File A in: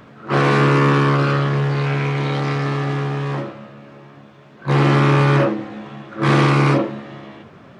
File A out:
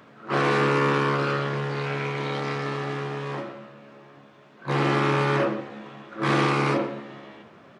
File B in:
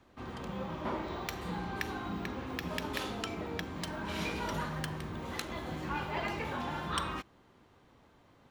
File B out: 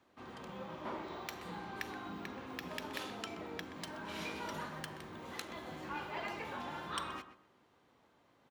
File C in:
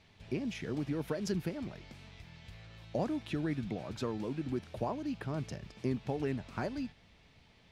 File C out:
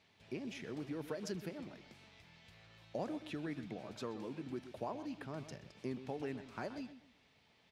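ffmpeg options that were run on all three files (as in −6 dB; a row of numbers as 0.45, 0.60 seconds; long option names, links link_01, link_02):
-filter_complex "[0:a]highpass=frequency=250:poles=1,asplit=2[link_01][link_02];[link_02]adelay=126,lowpass=frequency=2400:poles=1,volume=-11.5dB,asplit=2[link_03][link_04];[link_04]adelay=126,lowpass=frequency=2400:poles=1,volume=0.25,asplit=2[link_05][link_06];[link_06]adelay=126,lowpass=frequency=2400:poles=1,volume=0.25[link_07];[link_01][link_03][link_05][link_07]amix=inputs=4:normalize=0,volume=-5dB"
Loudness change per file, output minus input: −7.5, −6.0, −7.0 LU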